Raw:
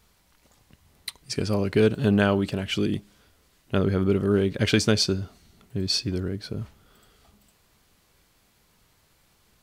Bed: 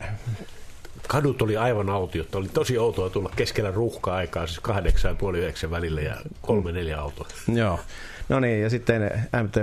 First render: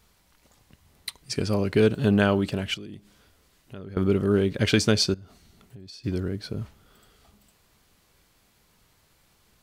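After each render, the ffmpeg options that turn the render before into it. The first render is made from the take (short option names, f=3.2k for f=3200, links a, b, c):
-filter_complex "[0:a]asettb=1/sr,asplit=3[a][b][c];[a]atrim=end=2.744[d];[b]atrim=start=2.74:end=3.97,asetpts=PTS-STARTPTS,afade=t=in:d=0.004:c=qsin,afade=t=out:st=1.226:d=0.004:c=qsin,acompressor=threshold=-42dB:ratio=3:attack=3.2:release=140:knee=1:detection=peak[e];[c]atrim=start=3.966[f];[d][e]acrossfade=d=0.004:c1=hsin:c2=qsin[g];[g][f]acrossfade=d=0.004:c1=qsin:c2=hsin,asettb=1/sr,asplit=3[h][i][j];[h]atrim=end=5.144[k];[i]atrim=start=5.14:end=6.04,asetpts=PTS-STARTPTS,afade=t=in:d=0.004:c=qsin,afade=t=out:st=0.896:d=0.004:c=qsin,acompressor=threshold=-41dB:ratio=12:attack=3.2:release=140:knee=1:detection=peak[l];[j]atrim=start=6.036[m];[k][l]acrossfade=d=0.004:c1=hsin:c2=qsin[n];[n][m]acrossfade=d=0.004:c1=qsin:c2=hsin"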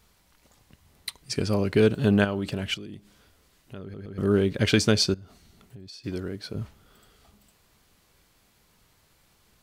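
-filter_complex "[0:a]asettb=1/sr,asplit=3[a][b][c];[a]atrim=end=2.244[d];[b]atrim=start=2.24:end=2.72,asetpts=PTS-STARTPTS,afade=t=in:d=0.004:c=qsin,afade=t=out:st=0.476:d=0.004:c=qsin,acompressor=threshold=-24dB:ratio=6:attack=3.2:release=140:knee=1:detection=peak[e];[c]atrim=start=2.716[f];[d][e]acrossfade=d=0.004:c1=hsin:c2=qsin[g];[g][f]acrossfade=d=0.004:c1=qsin:c2=hsin,asettb=1/sr,asplit=3[h][i][j];[h]atrim=end=5.884[k];[i]atrim=start=5.88:end=6.55,asetpts=PTS-STARTPTS,afade=t=in:d=0.004:c=qsin,afade=t=out:st=0.666:d=0.004:c=qsin,lowshelf=f=220:g=-8.5[l];[j]atrim=start=6.546[m];[k][l]acrossfade=d=0.004:c1=hsin:c2=qsin[n];[n][m]acrossfade=d=0.004:c1=qsin:c2=hsin,asplit=4[o][p][q][r];[o]atrim=end=3.942[s];[p]atrim=start=3.818:end=3.942[t];[q]atrim=start=3.818:end=3.942[u];[r]atrim=start=4.178[v];[s][t]acrossfade=d=0.004:c1=hsin:c2=hsin[w];[w][u]acrossfade=d=0.004:c1=hsin:c2=hsin[x];[x][v]acrossfade=d=0.004:c1=hsin:c2=hsin"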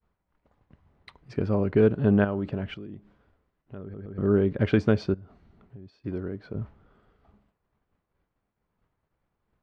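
-af "lowpass=1.4k,agate=range=-33dB:threshold=-56dB:ratio=3:detection=peak"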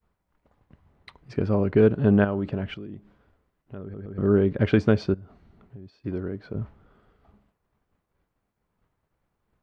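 -af "volume=2dB"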